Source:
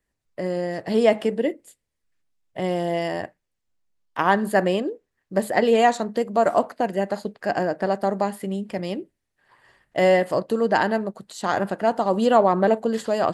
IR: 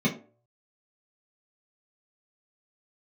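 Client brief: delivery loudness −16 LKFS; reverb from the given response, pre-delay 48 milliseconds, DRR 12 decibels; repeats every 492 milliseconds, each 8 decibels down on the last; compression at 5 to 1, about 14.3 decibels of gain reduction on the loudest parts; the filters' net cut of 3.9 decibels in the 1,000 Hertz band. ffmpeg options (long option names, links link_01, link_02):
-filter_complex "[0:a]equalizer=frequency=1000:width_type=o:gain=-6,acompressor=threshold=-31dB:ratio=5,aecho=1:1:492|984|1476|1968|2460:0.398|0.159|0.0637|0.0255|0.0102,asplit=2[link_01][link_02];[1:a]atrim=start_sample=2205,adelay=48[link_03];[link_02][link_03]afir=irnorm=-1:irlink=0,volume=-23dB[link_04];[link_01][link_04]amix=inputs=2:normalize=0,volume=16.5dB"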